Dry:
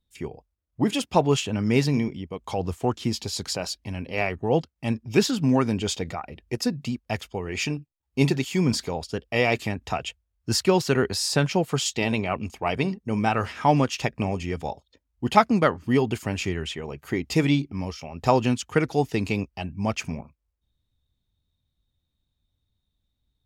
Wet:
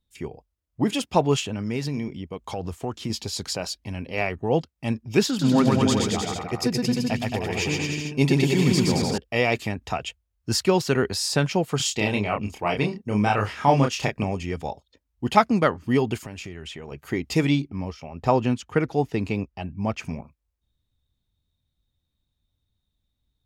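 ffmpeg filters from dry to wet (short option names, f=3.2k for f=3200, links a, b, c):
-filter_complex "[0:a]asettb=1/sr,asplit=3[a][b][c];[a]atrim=end=1.424[d];[b]atrim=start=1.42:end=3.1,asetpts=PTS-STARTPTS,afade=t=in:d=0.004:c=qsin,afade=t=out:st=1.676:d=0.004:c=qsin,acompressor=threshold=-26dB:ratio=2.5:attack=3.2:release=140:knee=1:detection=peak[e];[c]atrim=start=3.096[f];[d][e]acrossfade=d=0.004:c1=hsin:c2=qsin[g];[g][f]acrossfade=d=0.004:c1=qsin:c2=hsin,asettb=1/sr,asplit=3[h][i][j];[h]atrim=end=5.274[k];[i]atrim=start=5.27:end=9.18,asetpts=PTS-STARTPTS,afade=t=in:d=0.004:c=qsin,afade=t=out:st=3.906:d=0.004:c=qsin,aecho=1:1:120|222|308.7|382.4|445:0.794|0.631|0.501|0.398|0.316,atrim=end_sample=172431[l];[j]atrim=start=9.176[m];[k][l]acrossfade=d=0.004:c1=hsin:c2=qsin[n];[n][m]acrossfade=d=0.004:c1=qsin:c2=hsin,asettb=1/sr,asplit=3[o][p][q];[o]atrim=end=11.774[r];[p]atrim=start=11.77:end=14.24,asetpts=PTS-STARTPTS,afade=t=in:d=0.004:c=qsin,afade=t=out:st=2.466:d=0.004:c=qsin,asplit=2[s][t];[t]adelay=29,volume=-3.5dB[u];[s][u]amix=inputs=2:normalize=0,atrim=end_sample=108927[v];[q]atrim=start=14.236[w];[r][v]acrossfade=d=0.004:c1=hsin:c2=qsin[x];[x][w]acrossfade=d=0.004:c1=qsin:c2=hsin,asettb=1/sr,asplit=3[y][z][aa];[y]atrim=end=16.194[ab];[z]atrim=start=16.19:end=16.92,asetpts=PTS-STARTPTS,afade=t=in:d=0.004:c=qsin,afade=t=out:st=0.726:d=0.004:c=qsin,acompressor=threshold=-33dB:ratio=6:attack=3.2:release=140:knee=1:detection=peak[ac];[aa]atrim=start=16.916[ad];[ab][ac]acrossfade=d=0.004:c1=hsin:c2=qsin[ae];[ae][ad]acrossfade=d=0.004:c1=qsin:c2=hsin,asettb=1/sr,asplit=3[af][ag][ah];[af]atrim=end=17.674[ai];[ag]atrim=start=17.67:end=20.03,asetpts=PTS-STARTPTS,afade=t=in:d=0.004:c=qsin,afade=t=out:st=2.356:d=0.004:c=qsin,highshelf=f=3.3k:g=-10[aj];[ah]atrim=start=20.026[ak];[ai][aj]acrossfade=d=0.004:c1=hsin:c2=qsin[al];[al][ak]acrossfade=d=0.004:c1=qsin:c2=hsin"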